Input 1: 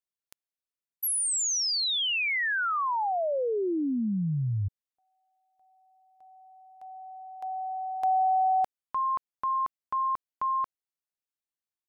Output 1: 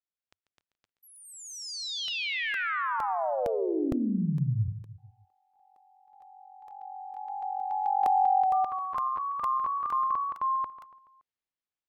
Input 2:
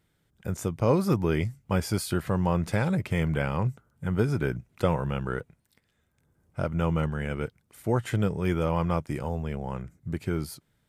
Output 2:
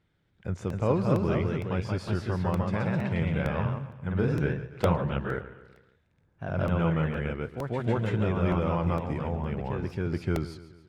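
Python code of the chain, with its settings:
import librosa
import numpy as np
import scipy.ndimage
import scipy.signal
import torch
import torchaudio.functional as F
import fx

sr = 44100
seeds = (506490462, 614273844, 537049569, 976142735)

y = fx.peak_eq(x, sr, hz=91.0, db=3.5, octaves=0.28)
y = fx.echo_feedback(y, sr, ms=142, feedback_pct=48, wet_db=-14.5)
y = fx.echo_pitch(y, sr, ms=276, semitones=1, count=2, db_per_echo=-3.0)
y = fx.rider(y, sr, range_db=4, speed_s=2.0)
y = scipy.signal.sosfilt(scipy.signal.butter(2, 3900.0, 'lowpass', fs=sr, output='sos'), y)
y = fx.buffer_crackle(y, sr, first_s=0.7, period_s=0.46, block=64, kind='repeat')
y = F.gain(torch.from_numpy(y), -3.5).numpy()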